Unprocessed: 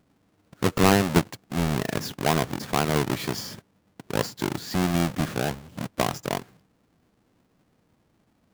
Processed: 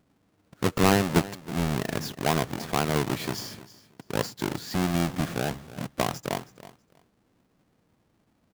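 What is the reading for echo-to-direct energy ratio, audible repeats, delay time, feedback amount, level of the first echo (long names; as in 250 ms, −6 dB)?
−17.0 dB, 2, 322 ms, 19%, −17.0 dB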